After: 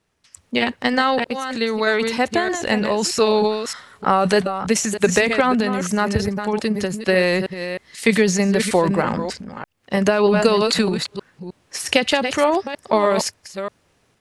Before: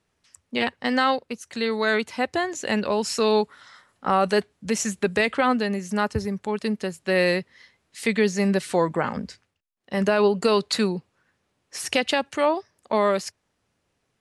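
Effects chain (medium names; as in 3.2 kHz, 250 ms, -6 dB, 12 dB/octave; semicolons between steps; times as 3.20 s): chunks repeated in reverse 311 ms, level -9 dB; transient shaper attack +6 dB, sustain +10 dB; trim +1.5 dB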